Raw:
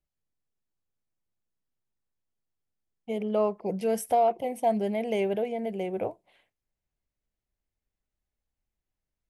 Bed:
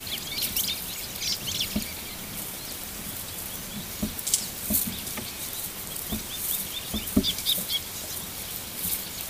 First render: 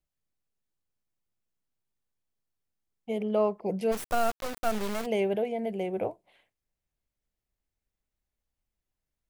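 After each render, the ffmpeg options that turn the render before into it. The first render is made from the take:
ffmpeg -i in.wav -filter_complex "[0:a]asplit=3[link_01][link_02][link_03];[link_01]afade=type=out:start_time=3.91:duration=0.02[link_04];[link_02]acrusher=bits=3:dc=4:mix=0:aa=0.000001,afade=type=in:start_time=3.91:duration=0.02,afade=type=out:start_time=5.05:duration=0.02[link_05];[link_03]afade=type=in:start_time=5.05:duration=0.02[link_06];[link_04][link_05][link_06]amix=inputs=3:normalize=0" out.wav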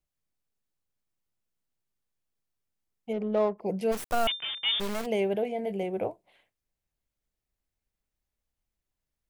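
ffmpeg -i in.wav -filter_complex "[0:a]asplit=3[link_01][link_02][link_03];[link_01]afade=type=out:start_time=3.12:duration=0.02[link_04];[link_02]adynamicsmooth=sensitivity=3:basefreq=1000,afade=type=in:start_time=3.12:duration=0.02,afade=type=out:start_time=3.57:duration=0.02[link_05];[link_03]afade=type=in:start_time=3.57:duration=0.02[link_06];[link_04][link_05][link_06]amix=inputs=3:normalize=0,asettb=1/sr,asplit=3[link_07][link_08][link_09];[link_07]atrim=end=4.274[link_10];[link_08]atrim=start=4.27:end=4.8,asetpts=PTS-STARTPTS,afade=type=in:duration=0.004:curve=qsin,afade=type=out:start_time=0.526:duration=0.004:curve=qsin,lowpass=frequency=3100:width_type=q:width=0.5098,lowpass=frequency=3100:width_type=q:width=0.6013,lowpass=frequency=3100:width_type=q:width=0.9,lowpass=frequency=3100:width_type=q:width=2.563,afreqshift=-3600[link_11];[link_09]atrim=start=4.796[link_12];[link_10][link_11]acrossfade=duration=0.004:curve1=hsin:curve2=qsin[link_13];[link_13][link_12]acrossfade=duration=0.004:curve1=qsin:curve2=hsin,asettb=1/sr,asplit=3[link_14][link_15][link_16];[link_14]atrim=end=5.414[link_17];[link_15]atrim=start=5.41:end=5.83,asetpts=PTS-STARTPTS,afade=type=in:duration=0.004:curve=qsin,afade=type=out:start_time=0.416:duration=0.004:curve=qsin,asplit=2[link_18][link_19];[link_19]adelay=20,volume=-9dB[link_20];[link_18][link_20]amix=inputs=2:normalize=0,atrim=end_sample=18522[link_21];[link_16]atrim=start=5.826[link_22];[link_17][link_21]acrossfade=duration=0.004:curve1=hsin:curve2=qsin[link_23];[link_23][link_22]acrossfade=duration=0.004:curve1=qsin:curve2=hsin" out.wav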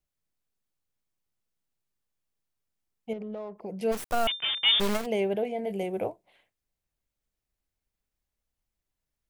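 ffmpeg -i in.wav -filter_complex "[0:a]asettb=1/sr,asplit=3[link_01][link_02][link_03];[link_01]atrim=end=3.134[link_04];[link_02]atrim=start=3.13:end=3.82,asetpts=PTS-STARTPTS,afade=type=in:duration=0.004:curve=qsin,afade=type=out:start_time=0.686:duration=0.004:curve=qsin,acompressor=threshold=-33dB:ratio=16:attack=3.2:release=140:knee=1:detection=peak[link_05];[link_03]atrim=start=3.816[link_06];[link_04][link_05]acrossfade=duration=0.004:curve1=hsin:curve2=qsin[link_07];[link_07][link_06]acrossfade=duration=0.004:curve1=qsin:curve2=hsin,asplit=3[link_08][link_09][link_10];[link_08]afade=type=out:start_time=4.42:duration=0.02[link_11];[link_09]acontrast=37,afade=type=in:start_time=4.42:duration=0.02,afade=type=out:start_time=4.96:duration=0.02[link_12];[link_10]afade=type=in:start_time=4.96:duration=0.02[link_13];[link_11][link_12][link_13]amix=inputs=3:normalize=0,asettb=1/sr,asplit=3[link_14][link_15][link_16];[link_14]atrim=end=5.704[link_17];[link_15]atrim=start=5.7:end=6.1,asetpts=PTS-STARTPTS,afade=type=in:duration=0.004:curve=qsin,afade=type=out:start_time=0.396:duration=0.004:curve=qsin,highshelf=frequency=6200:gain=11[link_18];[link_16]atrim=start=6.096[link_19];[link_17][link_18]acrossfade=duration=0.004:curve1=hsin:curve2=qsin[link_20];[link_20][link_19]acrossfade=duration=0.004:curve1=qsin:curve2=hsin" out.wav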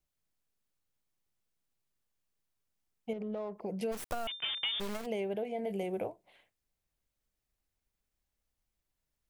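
ffmpeg -i in.wav -af "acompressor=threshold=-32dB:ratio=10" out.wav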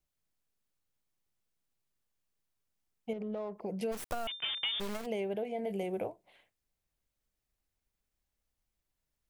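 ffmpeg -i in.wav -af anull out.wav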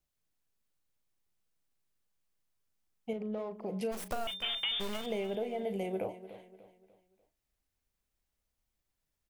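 ffmpeg -i in.wav -filter_complex "[0:a]asplit=2[link_01][link_02];[link_02]adelay=37,volume=-13dB[link_03];[link_01][link_03]amix=inputs=2:normalize=0,aecho=1:1:295|590|885|1180:0.2|0.0798|0.0319|0.0128" out.wav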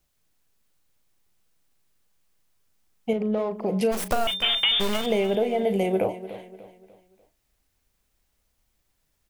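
ffmpeg -i in.wav -af "volume=12dB" out.wav

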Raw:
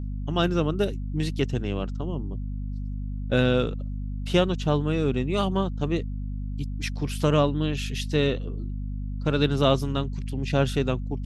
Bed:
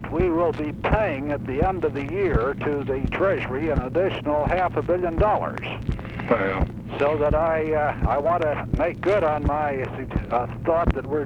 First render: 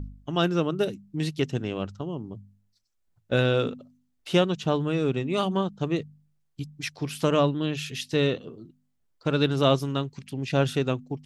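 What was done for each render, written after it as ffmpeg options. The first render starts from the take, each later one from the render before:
ffmpeg -i in.wav -af "bandreject=frequency=50:width_type=h:width=4,bandreject=frequency=100:width_type=h:width=4,bandreject=frequency=150:width_type=h:width=4,bandreject=frequency=200:width_type=h:width=4,bandreject=frequency=250:width_type=h:width=4" out.wav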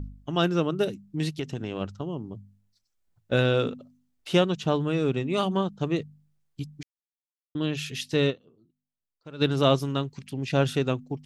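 ffmpeg -i in.wav -filter_complex "[0:a]asettb=1/sr,asplit=3[link_01][link_02][link_03];[link_01]atrim=end=1.384[link_04];[link_02]atrim=start=1.38:end=1.81,asetpts=PTS-STARTPTS,afade=type=in:duration=0.004:curve=qsin,afade=type=out:start_time=0.426:duration=0.004:curve=qsin,acompressor=threshold=-26dB:ratio=6:attack=3.2:release=140:knee=1:detection=peak[link_05];[link_03]atrim=start=1.806[link_06];[link_04][link_05]acrossfade=duration=0.004:curve1=hsin:curve2=qsin[link_07];[link_07][link_06]acrossfade=duration=0.004:curve1=qsin:curve2=hsin,asplit=5[link_08][link_09][link_10][link_11][link_12];[link_08]atrim=end=6.83,asetpts=PTS-STARTPTS,afade=type=out:start_time=6.826:duration=0.004:curve=hsin[link_13];[link_09]atrim=start=6.83:end=7.55,asetpts=PTS-STARTPTS,volume=0[link_14];[link_10]atrim=start=7.55:end=8.47,asetpts=PTS-STARTPTS,afade=type=in:duration=0.004:curve=hsin,afade=type=out:start_time=0.75:duration=0.17:curve=exp:silence=0.133352[link_15];[link_11]atrim=start=8.47:end=9.25,asetpts=PTS-STARTPTS,volume=-17.5dB[link_16];[link_12]atrim=start=9.25,asetpts=PTS-STARTPTS,afade=type=in:duration=0.17:curve=exp:silence=0.133352[link_17];[link_13][link_14][link_15][link_16][link_17]concat=n=5:v=0:a=1" out.wav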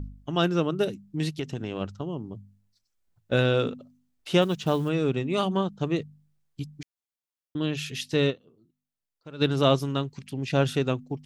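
ffmpeg -i in.wav -filter_complex "[0:a]asplit=3[link_01][link_02][link_03];[link_01]afade=type=out:start_time=4.41:duration=0.02[link_04];[link_02]acrusher=bits=7:mode=log:mix=0:aa=0.000001,afade=type=in:start_time=4.41:duration=0.02,afade=type=out:start_time=4.88:duration=0.02[link_05];[link_03]afade=type=in:start_time=4.88:duration=0.02[link_06];[link_04][link_05][link_06]amix=inputs=3:normalize=0" out.wav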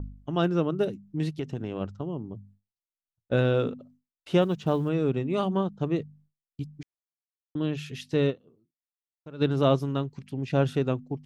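ffmpeg -i in.wav -af "agate=range=-33dB:threshold=-52dB:ratio=3:detection=peak,highshelf=frequency=2000:gain=-10.5" out.wav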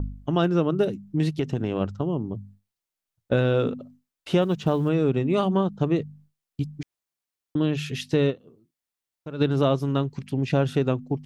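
ffmpeg -i in.wav -filter_complex "[0:a]asplit=2[link_01][link_02];[link_02]alimiter=limit=-15.5dB:level=0:latency=1:release=444,volume=2.5dB[link_03];[link_01][link_03]amix=inputs=2:normalize=0,acompressor=threshold=-20dB:ratio=2" out.wav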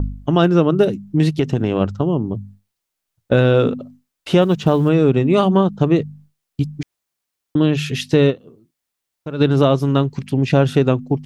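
ffmpeg -i in.wav -af "volume=8dB,alimiter=limit=-3dB:level=0:latency=1" out.wav

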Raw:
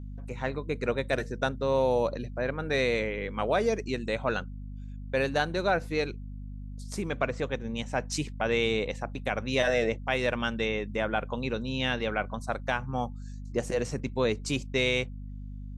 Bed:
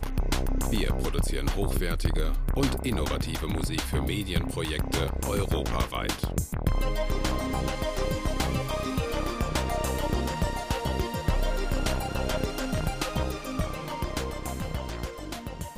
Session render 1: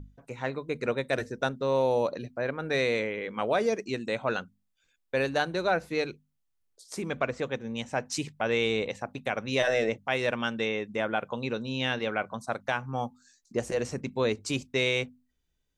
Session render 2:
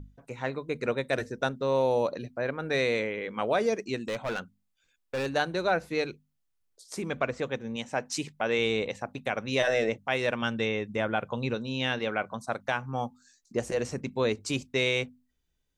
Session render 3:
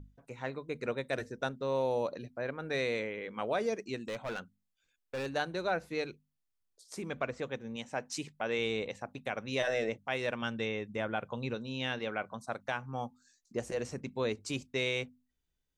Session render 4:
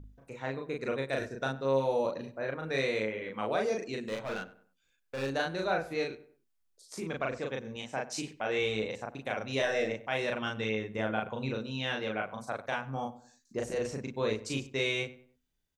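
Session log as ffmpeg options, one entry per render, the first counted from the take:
ffmpeg -i in.wav -af "bandreject=frequency=50:width_type=h:width=6,bandreject=frequency=100:width_type=h:width=6,bandreject=frequency=150:width_type=h:width=6,bandreject=frequency=200:width_type=h:width=6,bandreject=frequency=250:width_type=h:width=6" out.wav
ffmpeg -i in.wav -filter_complex "[0:a]asettb=1/sr,asplit=3[link_01][link_02][link_03];[link_01]atrim=end=3.974[link_04];[link_02]atrim=start=3.97:end=5.26,asetpts=PTS-STARTPTS,afade=type=in:duration=0.004:curve=qsin,afade=type=out:start_time=1.286:duration=0.004:curve=qsin,asoftclip=type=hard:threshold=-27.5dB[link_05];[link_03]atrim=start=5.256[link_06];[link_04][link_05]acrossfade=duration=0.004:curve1=hsin:curve2=qsin[link_07];[link_07][link_06]acrossfade=duration=0.004:curve1=qsin:curve2=hsin,asettb=1/sr,asplit=3[link_08][link_09][link_10];[link_08]atrim=end=7.764[link_11];[link_09]atrim=start=7.76:end=8.59,asetpts=PTS-STARTPTS,afade=type=in:duration=0.004:curve=qsin,afade=type=out:start_time=0.826:duration=0.004:curve=qsin,equalizer=frequency=73:width=1.3:gain=-12.5[link_12];[link_10]atrim=start=8.586[link_13];[link_11][link_12]acrossfade=duration=0.004:curve1=hsin:curve2=qsin[link_14];[link_14][link_13]acrossfade=duration=0.004:curve1=qsin:curve2=hsin,asettb=1/sr,asplit=3[link_15][link_16][link_17];[link_15]atrim=end=10.424[link_18];[link_16]atrim=start=10.42:end=11.55,asetpts=PTS-STARTPTS,afade=type=in:duration=0.004:curve=qsin,afade=type=out:start_time=1.126:duration=0.004:curve=qsin,equalizer=frequency=81:width_type=o:width=1.5:gain=9.5[link_19];[link_17]atrim=start=11.546[link_20];[link_18][link_19]acrossfade=duration=0.004:curve1=hsin:curve2=qsin[link_21];[link_21][link_20]acrossfade=duration=0.004:curve1=qsin:curve2=hsin" out.wav
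ffmpeg -i in.wav -af "volume=-6dB" out.wav
ffmpeg -i in.wav -filter_complex "[0:a]asplit=2[link_01][link_02];[link_02]adelay=37,volume=-2dB[link_03];[link_01][link_03]amix=inputs=2:normalize=0,asplit=2[link_04][link_05];[link_05]adelay=96,lowpass=frequency=2000:poles=1,volume=-16dB,asplit=2[link_06][link_07];[link_07]adelay=96,lowpass=frequency=2000:poles=1,volume=0.36,asplit=2[link_08][link_09];[link_09]adelay=96,lowpass=frequency=2000:poles=1,volume=0.36[link_10];[link_04][link_06][link_08][link_10]amix=inputs=4:normalize=0" out.wav

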